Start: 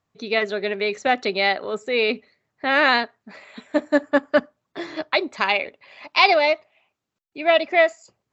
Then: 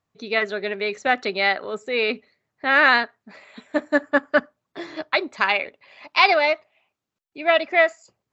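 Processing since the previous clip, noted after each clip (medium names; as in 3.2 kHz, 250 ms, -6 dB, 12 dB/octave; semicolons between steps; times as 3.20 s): dynamic bell 1.5 kHz, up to +7 dB, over -33 dBFS, Q 1.5; trim -2.5 dB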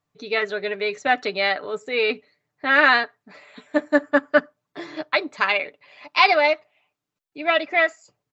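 comb 6.8 ms, depth 47%; trim -1 dB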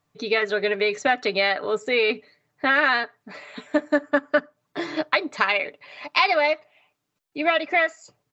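compression 3:1, threshold -25 dBFS, peak gain reduction 11.5 dB; trim +6 dB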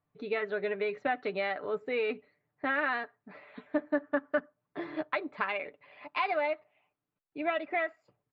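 distance through air 460 m; trim -7.5 dB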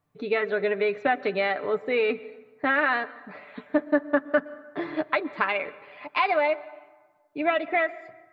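plate-style reverb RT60 1.4 s, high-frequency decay 0.55×, pre-delay 105 ms, DRR 18.5 dB; trim +7 dB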